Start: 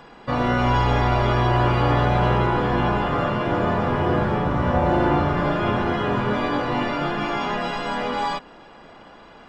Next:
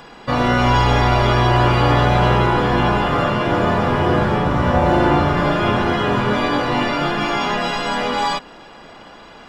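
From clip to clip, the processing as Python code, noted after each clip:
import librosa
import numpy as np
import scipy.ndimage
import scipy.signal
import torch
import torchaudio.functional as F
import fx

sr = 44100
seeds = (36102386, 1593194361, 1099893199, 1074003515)

y = fx.high_shelf(x, sr, hz=3400.0, db=8.5)
y = y * 10.0 ** (4.0 / 20.0)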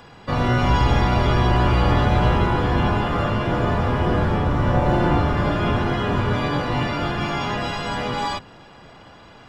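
y = fx.octave_divider(x, sr, octaves=1, level_db=3.0)
y = y * 10.0 ** (-5.5 / 20.0)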